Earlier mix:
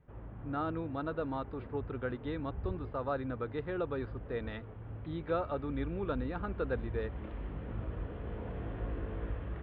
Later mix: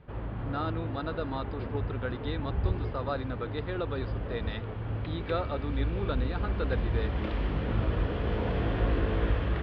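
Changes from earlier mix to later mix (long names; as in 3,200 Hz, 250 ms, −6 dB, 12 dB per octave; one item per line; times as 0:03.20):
background +10.5 dB
master: remove high-frequency loss of the air 430 metres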